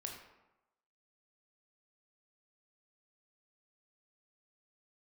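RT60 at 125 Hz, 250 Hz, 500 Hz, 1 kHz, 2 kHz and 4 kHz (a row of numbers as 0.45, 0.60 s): 0.90, 0.95, 0.95, 1.0, 0.80, 0.60 s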